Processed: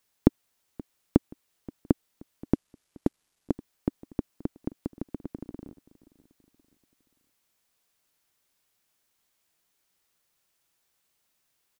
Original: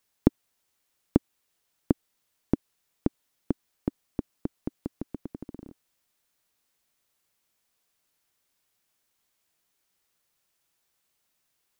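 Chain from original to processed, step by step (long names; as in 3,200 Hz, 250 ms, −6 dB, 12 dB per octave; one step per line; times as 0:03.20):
0:02.54–0:03.51: variable-slope delta modulation 64 kbit/s
repeating echo 527 ms, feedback 46%, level −21.5 dB
level +1 dB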